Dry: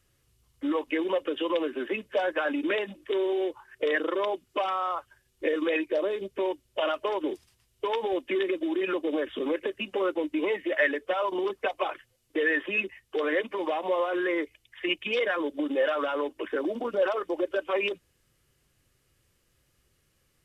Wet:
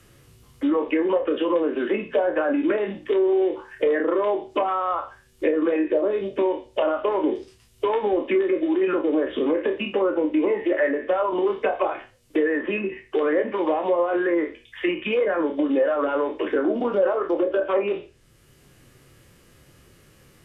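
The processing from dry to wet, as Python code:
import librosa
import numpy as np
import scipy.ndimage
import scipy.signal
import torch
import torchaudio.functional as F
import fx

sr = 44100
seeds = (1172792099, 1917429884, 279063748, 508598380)

y = fx.spec_trails(x, sr, decay_s=0.3)
y = fx.env_lowpass_down(y, sr, base_hz=1200.0, full_db=-22.5)
y = fx.low_shelf(y, sr, hz=370.0, db=5.5)
y = fx.doubler(y, sr, ms=29.0, db=-9)
y = fx.band_squash(y, sr, depth_pct=40)
y = y * librosa.db_to_amplitude(3.0)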